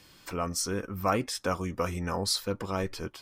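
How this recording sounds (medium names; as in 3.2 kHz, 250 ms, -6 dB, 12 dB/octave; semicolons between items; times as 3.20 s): noise floor -57 dBFS; spectral tilt -4.0 dB/octave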